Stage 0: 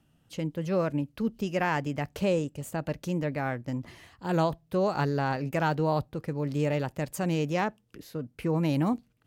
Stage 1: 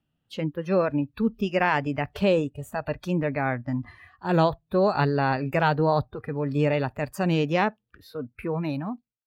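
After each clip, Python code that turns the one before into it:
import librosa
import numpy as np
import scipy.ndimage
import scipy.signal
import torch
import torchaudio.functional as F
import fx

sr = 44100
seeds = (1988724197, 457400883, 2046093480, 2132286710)

y = fx.fade_out_tail(x, sr, length_s=1.11)
y = fx.high_shelf_res(y, sr, hz=5100.0, db=-8.0, q=1.5)
y = fx.noise_reduce_blind(y, sr, reduce_db=16)
y = y * 10.0 ** (5.0 / 20.0)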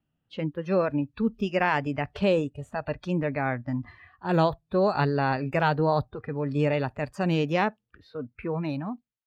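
y = fx.env_lowpass(x, sr, base_hz=2800.0, full_db=-20.5)
y = y * 10.0 ** (-1.5 / 20.0)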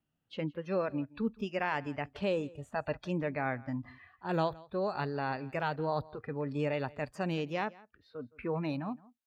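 y = fx.low_shelf(x, sr, hz=200.0, db=-5.0)
y = fx.rider(y, sr, range_db=4, speed_s=0.5)
y = y + 10.0 ** (-22.0 / 20.0) * np.pad(y, (int(167 * sr / 1000.0), 0))[:len(y)]
y = y * 10.0 ** (-6.5 / 20.0)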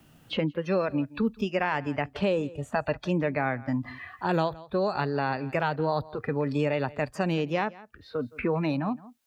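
y = fx.band_squash(x, sr, depth_pct=70)
y = y * 10.0 ** (6.0 / 20.0)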